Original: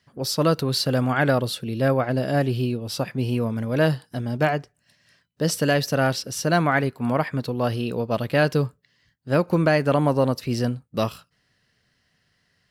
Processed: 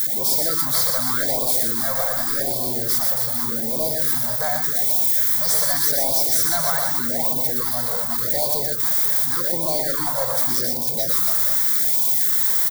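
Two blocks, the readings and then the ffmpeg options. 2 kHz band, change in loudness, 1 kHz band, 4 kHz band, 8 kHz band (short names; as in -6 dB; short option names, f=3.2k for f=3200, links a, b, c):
-4.0 dB, +6.0 dB, -2.5 dB, +4.0 dB, +14.0 dB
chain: -filter_complex "[0:a]aeval=exprs='val(0)+0.5*0.0631*sgn(val(0))':c=same,aemphasis=mode=production:type=riaa,afftfilt=real='re*gte(hypot(re,im),0.0316)':imag='im*gte(hypot(re,im),0.0316)':win_size=1024:overlap=0.75,equalizer=f=2.6k:w=1.2:g=-11,acrossover=split=550|2200[a][b][c];[a]alimiter=level_in=1.5dB:limit=-24dB:level=0:latency=1:release=244,volume=-1.5dB[d];[c]acontrast=66[e];[d][b][e]amix=inputs=3:normalize=0,asoftclip=type=tanh:threshold=-18dB,asuperstop=centerf=2700:order=8:qfactor=2.7,aecho=1:1:120|276|478.8|742.4|1085:0.631|0.398|0.251|0.158|0.1,afftfilt=real='re*(1-between(b*sr/1024,300*pow(1600/300,0.5+0.5*sin(2*PI*0.85*pts/sr))/1.41,300*pow(1600/300,0.5+0.5*sin(2*PI*0.85*pts/sr))*1.41))':imag='im*(1-between(b*sr/1024,300*pow(1600/300,0.5+0.5*sin(2*PI*0.85*pts/sr))/1.41,300*pow(1600/300,0.5+0.5*sin(2*PI*0.85*pts/sr))*1.41))':win_size=1024:overlap=0.75"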